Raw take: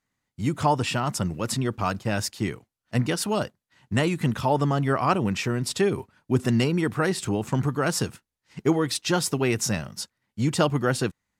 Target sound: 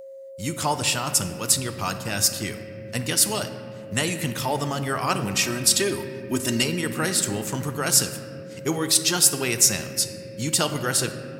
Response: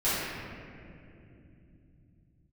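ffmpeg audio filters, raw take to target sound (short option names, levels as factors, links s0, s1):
-filter_complex "[0:a]asettb=1/sr,asplit=3[s0][s1][s2];[s0]atrim=end=5.344[s3];[s1]atrim=start=5.34:end=6.63,asetpts=PTS-STARTPTS,afade=t=in:d=0.004:c=qsin,afade=t=out:st=1.286:d=0.004:c=qsin,aecho=1:1:3.2:0.8,atrim=end_sample=56889[s4];[s2]atrim=start=6.626[s5];[s3][s4]acrossfade=d=0.004:c1=hsin:c2=qsin[s6];[s6][s5]acrossfade=d=0.004:c1=qsin:c2=hsin,asplit=2[s7][s8];[1:a]atrim=start_sample=2205[s9];[s8][s9]afir=irnorm=-1:irlink=0,volume=0.1[s10];[s7][s10]amix=inputs=2:normalize=0,aeval=exprs='val(0)+0.0224*sin(2*PI*540*n/s)':c=same,crystalizer=i=6.5:c=0,volume=0.501"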